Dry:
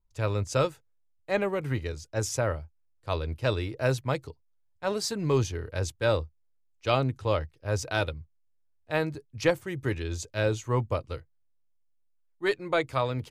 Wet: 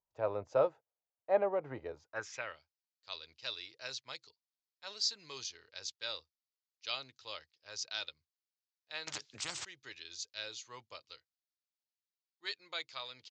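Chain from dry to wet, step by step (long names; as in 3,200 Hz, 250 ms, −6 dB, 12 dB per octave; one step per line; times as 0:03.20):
downsampling to 16,000 Hz
band-pass filter sweep 700 Hz → 4,500 Hz, 0:01.92–0:02.65
0:09.07–0:09.65: every bin compressed towards the loudest bin 10 to 1
level +2 dB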